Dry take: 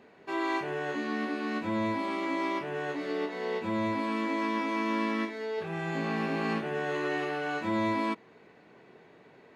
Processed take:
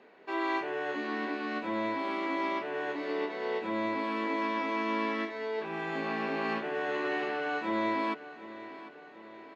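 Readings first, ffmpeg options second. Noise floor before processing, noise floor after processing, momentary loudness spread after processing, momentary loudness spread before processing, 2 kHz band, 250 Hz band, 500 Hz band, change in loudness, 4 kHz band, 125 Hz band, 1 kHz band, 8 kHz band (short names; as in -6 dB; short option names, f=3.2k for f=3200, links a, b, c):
-57 dBFS, -50 dBFS, 13 LU, 4 LU, 0.0 dB, -3.5 dB, -0.5 dB, -1.0 dB, -1.0 dB, -10.5 dB, 0.0 dB, n/a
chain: -filter_complex "[0:a]acrossover=split=240 5400:gain=0.158 1 0.158[a][b][c];[a][b][c]amix=inputs=3:normalize=0,bandreject=f=50:t=h:w=6,bandreject=f=100:t=h:w=6,bandreject=f=150:t=h:w=6,asplit=2[d][e];[e]aecho=0:1:748|1496|2244|2992|3740:0.168|0.0923|0.0508|0.0279|0.0154[f];[d][f]amix=inputs=2:normalize=0"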